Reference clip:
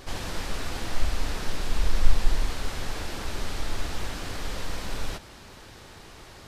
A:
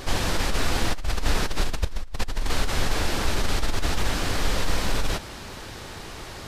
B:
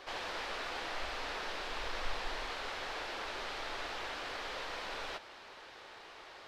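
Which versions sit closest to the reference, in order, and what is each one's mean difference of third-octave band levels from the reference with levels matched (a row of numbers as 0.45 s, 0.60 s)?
A, B; 3.0 dB, 7.5 dB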